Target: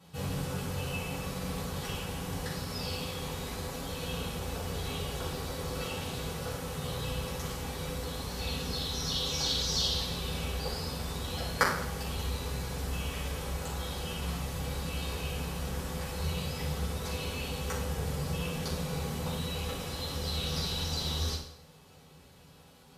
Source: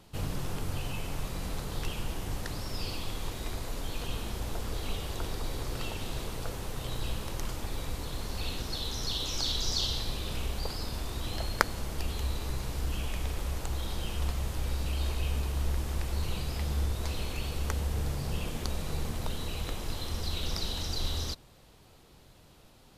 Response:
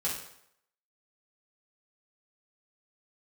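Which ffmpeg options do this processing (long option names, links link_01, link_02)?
-filter_complex "[0:a]highpass=60[link_01];[1:a]atrim=start_sample=2205[link_02];[link_01][link_02]afir=irnorm=-1:irlink=0,volume=-3.5dB"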